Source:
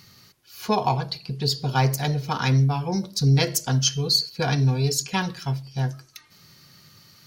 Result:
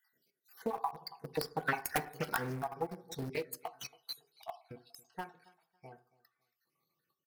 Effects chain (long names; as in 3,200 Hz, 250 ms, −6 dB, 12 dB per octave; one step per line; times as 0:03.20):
time-frequency cells dropped at random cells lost 56%
source passing by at 0:02.04, 16 m/s, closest 4.7 metres
high-pass filter 300 Hz 12 dB per octave
transient designer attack +7 dB, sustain −2 dB
wrap-around overflow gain 12.5 dB
comb filter 2.7 ms, depth 31%
repeating echo 277 ms, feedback 24%, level −22 dB
convolution reverb RT60 0.45 s, pre-delay 3 ms, DRR 7 dB
in parallel at −8 dB: bit-depth reduction 6 bits, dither none
on the sum: flat-topped bell 4,800 Hz −11.5 dB
downward compressor 2 to 1, threshold −36 dBFS, peak gain reduction 10 dB
highs frequency-modulated by the lows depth 0.32 ms